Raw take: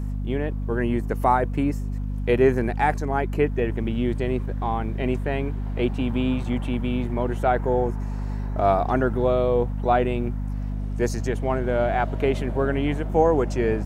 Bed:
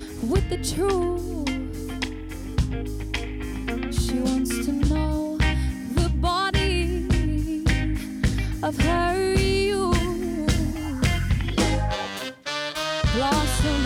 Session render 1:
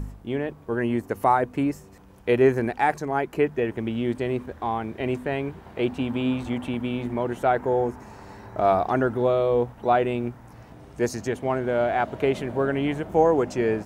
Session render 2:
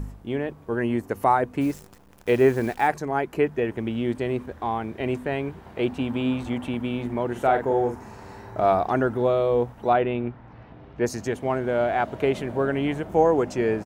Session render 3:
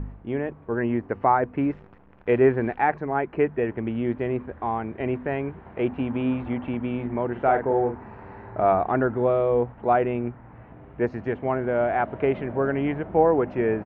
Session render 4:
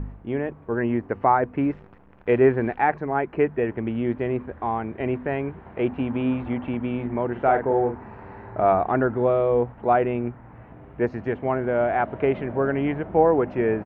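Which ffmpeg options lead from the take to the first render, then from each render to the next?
ffmpeg -i in.wav -af "bandreject=frequency=50:width_type=h:width=4,bandreject=frequency=100:width_type=h:width=4,bandreject=frequency=150:width_type=h:width=4,bandreject=frequency=200:width_type=h:width=4,bandreject=frequency=250:width_type=h:width=4" out.wav
ffmpeg -i in.wav -filter_complex "[0:a]asplit=3[link_01][link_02][link_03];[link_01]afade=type=out:start_time=1.6:duration=0.02[link_04];[link_02]acrusher=bits=8:dc=4:mix=0:aa=0.000001,afade=type=in:start_time=1.6:duration=0.02,afade=type=out:start_time=2.87:duration=0.02[link_05];[link_03]afade=type=in:start_time=2.87:duration=0.02[link_06];[link_04][link_05][link_06]amix=inputs=3:normalize=0,asplit=3[link_07][link_08][link_09];[link_07]afade=type=out:start_time=7.35:duration=0.02[link_10];[link_08]asplit=2[link_11][link_12];[link_12]adelay=43,volume=-6dB[link_13];[link_11][link_13]amix=inputs=2:normalize=0,afade=type=in:start_time=7.35:duration=0.02,afade=type=out:start_time=8.63:duration=0.02[link_14];[link_09]afade=type=in:start_time=8.63:duration=0.02[link_15];[link_10][link_14][link_15]amix=inputs=3:normalize=0,asplit=3[link_16][link_17][link_18];[link_16]afade=type=out:start_time=9.93:duration=0.02[link_19];[link_17]lowpass=frequency=3700:width=0.5412,lowpass=frequency=3700:width=1.3066,afade=type=in:start_time=9.93:duration=0.02,afade=type=out:start_time=11.05:duration=0.02[link_20];[link_18]afade=type=in:start_time=11.05:duration=0.02[link_21];[link_19][link_20][link_21]amix=inputs=3:normalize=0" out.wav
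ffmpeg -i in.wav -af "lowpass=frequency=2400:width=0.5412,lowpass=frequency=2400:width=1.3066" out.wav
ffmpeg -i in.wav -af "volume=1dB" out.wav

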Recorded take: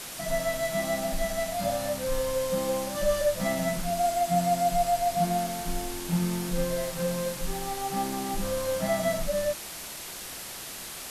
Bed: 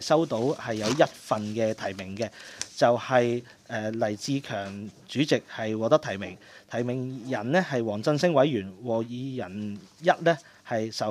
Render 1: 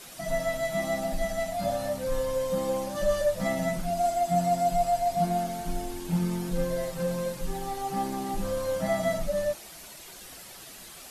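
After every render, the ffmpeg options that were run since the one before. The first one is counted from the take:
ffmpeg -i in.wav -af "afftdn=noise_reduction=9:noise_floor=-40" out.wav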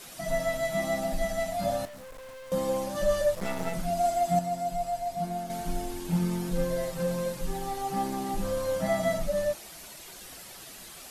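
ffmpeg -i in.wav -filter_complex "[0:a]asettb=1/sr,asplit=3[link_01][link_02][link_03];[link_01]atrim=end=1.854[link_04];[link_02]atrim=start=1.85:end=2.52,asetpts=PTS-STARTPTS,afade=type=in:duration=0.004:curve=qsin,afade=type=out:start_time=0.666:duration=0.004:curve=qsin,aeval=exprs='(tanh(158*val(0)+0.4)-tanh(0.4))/158':channel_layout=same[link_05];[link_03]atrim=start=2.516[link_06];[link_04][link_05]acrossfade=duration=0.004:curve1=hsin:curve2=qsin[link_07];[link_07][link_06]acrossfade=duration=0.004:curve1=qsin:curve2=hsin,asettb=1/sr,asplit=3[link_08][link_09][link_10];[link_08]atrim=end=3.354[link_11];[link_09]atrim=start=3.35:end=3.75,asetpts=PTS-STARTPTS,afade=type=in:duration=0.004:curve=qsin,afade=type=out:start_time=0.396:duration=0.004:curve=qsin,aeval=exprs='max(val(0),0)':channel_layout=same[link_12];[link_10]atrim=start=3.746[link_13];[link_11][link_12]acrossfade=duration=0.004:curve1=hsin:curve2=qsin[link_14];[link_14][link_13]acrossfade=duration=0.004:curve1=qsin:curve2=hsin,asplit=3[link_15][link_16][link_17];[link_15]atrim=end=4.392[link_18];[link_16]atrim=start=4.388:end=5.502,asetpts=PTS-STARTPTS,volume=-6dB[link_19];[link_17]atrim=start=5.498[link_20];[link_18][link_19]acrossfade=duration=0.004:curve1=hsin:curve2=hsin[link_21];[link_21][link_20]acrossfade=duration=0.004:curve1=hsin:curve2=hsin" out.wav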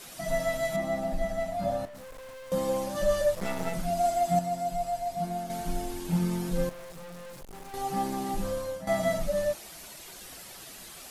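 ffmpeg -i in.wav -filter_complex "[0:a]asettb=1/sr,asplit=3[link_01][link_02][link_03];[link_01]atrim=end=0.764[link_04];[link_02]atrim=start=0.76:end=1.95,asetpts=PTS-STARTPTS,afade=type=in:duration=0.004:curve=qsin,afade=type=out:start_time=1.186:duration=0.004:curve=qsin,highshelf=frequency=2300:gain=-10[link_05];[link_03]atrim=start=1.946[link_06];[link_04][link_05]acrossfade=duration=0.004:curve1=hsin:curve2=qsin[link_07];[link_07][link_06]acrossfade=duration=0.004:curve1=qsin:curve2=hsin,asettb=1/sr,asplit=3[link_08][link_09][link_10];[link_08]atrim=end=6.694[link_11];[link_09]atrim=start=6.69:end=7.74,asetpts=PTS-STARTPTS,afade=type=in:duration=0.004:curve=qsin,afade=type=out:start_time=1.046:duration=0.004:curve=qsin,aeval=exprs='(tanh(141*val(0)+0.6)-tanh(0.6))/141':channel_layout=same[link_12];[link_10]atrim=start=7.736[link_13];[link_11][link_12]acrossfade=duration=0.004:curve1=hsin:curve2=qsin[link_14];[link_14][link_13]acrossfade=duration=0.004:curve1=qsin:curve2=hsin,asplit=2[link_15][link_16];[link_15]atrim=end=8.87,asetpts=PTS-STARTPTS,afade=type=out:start_time=8.26:duration=0.61:curve=qsin:silence=0.188365[link_17];[link_16]atrim=start=8.87,asetpts=PTS-STARTPTS,afade=type=in:duration=0.004:curve=hsin:silence=0.188365[link_18];[link_17][link_18]concat=n=2:v=0:a=1" out.wav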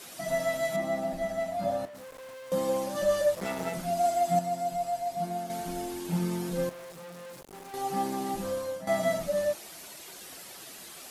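ffmpeg -i in.wav -af "highpass=frequency=180:poles=1,equalizer=frequency=340:width=1.5:gain=2.5" out.wav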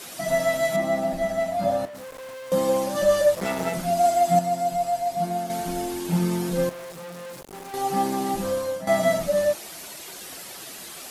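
ffmpeg -i in.wav -af "volume=6.5dB" out.wav

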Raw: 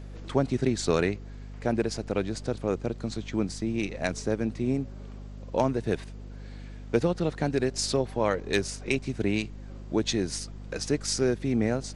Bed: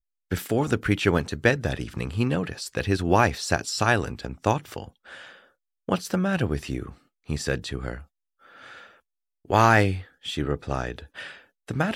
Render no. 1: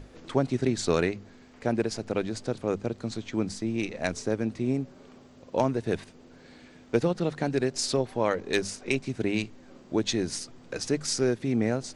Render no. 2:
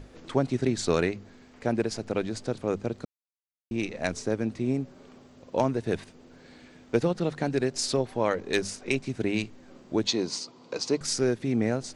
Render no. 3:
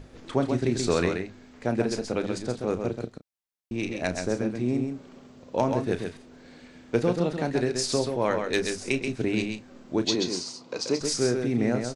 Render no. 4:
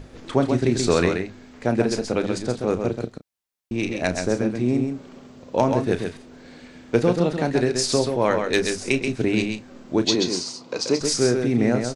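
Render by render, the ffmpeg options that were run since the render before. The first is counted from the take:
ffmpeg -i in.wav -af "bandreject=frequency=50:width_type=h:width=6,bandreject=frequency=100:width_type=h:width=6,bandreject=frequency=150:width_type=h:width=6,bandreject=frequency=200:width_type=h:width=6" out.wav
ffmpeg -i in.wav -filter_complex "[0:a]asettb=1/sr,asplit=3[link_01][link_02][link_03];[link_01]atrim=end=10.074[link_04];[link_02]atrim=start=10.07:end=11.01,asetpts=PTS-STARTPTS,afade=type=in:duration=0.004:curve=qsin,afade=type=out:start_time=0.936:duration=0.004:curve=qsin,highpass=180,equalizer=frequency=470:width_type=q:width=4:gain=3,equalizer=frequency=1000:width_type=q:width=4:gain=9,equalizer=frequency=1700:width_type=q:width=4:gain=-8,equalizer=frequency=4400:width_type=q:width=4:gain=7,lowpass=frequency=7500:width=0.5412,lowpass=frequency=7500:width=1.3066[link_05];[link_03]atrim=start=11.006[link_06];[link_04][link_05]acrossfade=duration=0.004:curve1=hsin:curve2=qsin[link_07];[link_07][link_06]acrossfade=duration=0.004:curve1=qsin:curve2=hsin,asplit=3[link_08][link_09][link_10];[link_08]atrim=end=3.05,asetpts=PTS-STARTPTS,afade=type=out:start_time=3.046:duration=0.004:curve=hsin[link_11];[link_09]atrim=start=3.05:end=3.71,asetpts=PTS-STARTPTS,volume=0[link_12];[link_10]atrim=start=3.71,asetpts=PTS-STARTPTS,afade=type=in:duration=0.004:curve=hsin[link_13];[link_11][link_12][link_13]concat=n=3:v=0:a=1" out.wav
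ffmpeg -i in.wav -filter_complex "[0:a]asplit=2[link_01][link_02];[link_02]adelay=33,volume=-11dB[link_03];[link_01][link_03]amix=inputs=2:normalize=0,asplit=2[link_04][link_05];[link_05]aecho=0:1:132:0.531[link_06];[link_04][link_06]amix=inputs=2:normalize=0" out.wav
ffmpeg -i in.wav -af "volume=5dB" out.wav

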